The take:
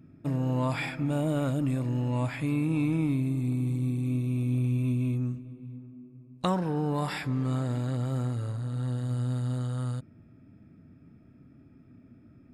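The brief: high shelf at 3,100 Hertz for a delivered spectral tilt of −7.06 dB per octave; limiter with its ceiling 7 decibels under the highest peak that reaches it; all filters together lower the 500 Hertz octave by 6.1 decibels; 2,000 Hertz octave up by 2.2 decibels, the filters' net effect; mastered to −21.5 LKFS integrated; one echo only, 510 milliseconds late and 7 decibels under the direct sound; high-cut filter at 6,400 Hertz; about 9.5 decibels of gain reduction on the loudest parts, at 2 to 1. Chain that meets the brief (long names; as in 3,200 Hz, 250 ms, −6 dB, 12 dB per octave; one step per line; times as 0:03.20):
low-pass filter 6,400 Hz
parametric band 500 Hz −8 dB
parametric band 2,000 Hz +6 dB
high-shelf EQ 3,100 Hz −7.5 dB
downward compressor 2 to 1, threshold −43 dBFS
brickwall limiter −32.5 dBFS
single-tap delay 510 ms −7 dB
level +19 dB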